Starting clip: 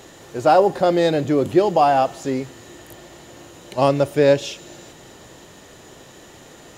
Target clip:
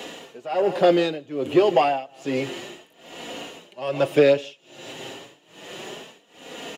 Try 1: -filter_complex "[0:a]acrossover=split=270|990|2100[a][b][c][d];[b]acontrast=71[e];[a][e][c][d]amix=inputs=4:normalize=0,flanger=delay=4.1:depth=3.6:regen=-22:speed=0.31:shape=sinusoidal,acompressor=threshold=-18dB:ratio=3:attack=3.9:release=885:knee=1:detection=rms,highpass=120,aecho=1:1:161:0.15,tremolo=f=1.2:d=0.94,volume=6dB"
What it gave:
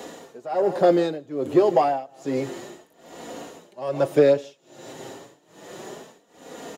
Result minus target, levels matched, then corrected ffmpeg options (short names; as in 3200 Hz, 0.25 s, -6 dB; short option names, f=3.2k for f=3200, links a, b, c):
2000 Hz band -6.0 dB
-filter_complex "[0:a]acrossover=split=270|990|2100[a][b][c][d];[b]acontrast=71[e];[a][e][c][d]amix=inputs=4:normalize=0,flanger=delay=4.1:depth=3.6:regen=-22:speed=0.31:shape=sinusoidal,acompressor=threshold=-18dB:ratio=3:attack=3.9:release=885:knee=1:detection=rms,highpass=120,equalizer=f=2.8k:t=o:w=0.74:g=14,aecho=1:1:161:0.15,tremolo=f=1.2:d=0.94,volume=6dB"